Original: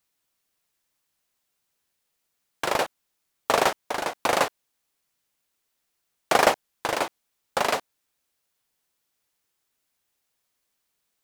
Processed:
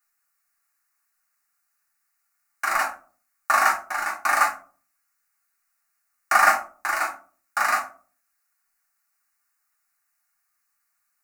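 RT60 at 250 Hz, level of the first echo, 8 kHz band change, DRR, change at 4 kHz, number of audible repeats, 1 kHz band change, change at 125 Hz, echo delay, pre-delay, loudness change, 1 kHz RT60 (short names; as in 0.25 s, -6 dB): 0.55 s, none, +1.5 dB, -3.0 dB, -6.0 dB, none, +3.5 dB, under -15 dB, none, 3 ms, +3.0 dB, 0.35 s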